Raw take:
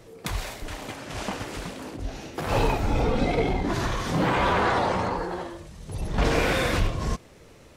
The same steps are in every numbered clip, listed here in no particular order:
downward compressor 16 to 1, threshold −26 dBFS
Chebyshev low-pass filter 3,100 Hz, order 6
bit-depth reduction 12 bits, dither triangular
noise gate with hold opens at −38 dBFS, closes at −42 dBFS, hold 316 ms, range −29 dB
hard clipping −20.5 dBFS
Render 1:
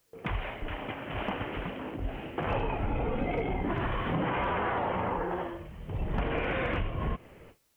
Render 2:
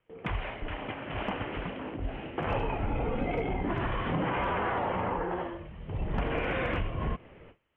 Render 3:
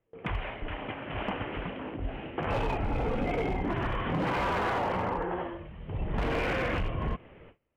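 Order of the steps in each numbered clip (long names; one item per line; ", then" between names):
Chebyshev low-pass filter, then noise gate with hold, then bit-depth reduction, then downward compressor, then hard clipping
noise gate with hold, then bit-depth reduction, then Chebyshev low-pass filter, then downward compressor, then hard clipping
bit-depth reduction, then Chebyshev low-pass filter, then hard clipping, then downward compressor, then noise gate with hold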